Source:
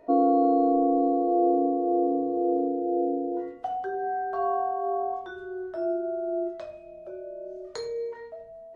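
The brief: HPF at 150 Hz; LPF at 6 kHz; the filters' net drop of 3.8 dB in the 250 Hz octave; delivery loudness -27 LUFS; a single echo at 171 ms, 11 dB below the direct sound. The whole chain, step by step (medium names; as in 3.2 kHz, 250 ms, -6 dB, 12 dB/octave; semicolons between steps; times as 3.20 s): high-pass 150 Hz; low-pass 6 kHz; peaking EQ 250 Hz -5 dB; delay 171 ms -11 dB; trim +2 dB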